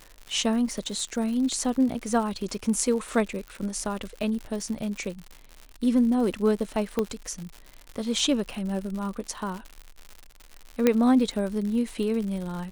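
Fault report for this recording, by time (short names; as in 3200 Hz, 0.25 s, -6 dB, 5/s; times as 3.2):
crackle 130/s -33 dBFS
3.48 pop -26 dBFS
6.99 pop -13 dBFS
10.87 pop -7 dBFS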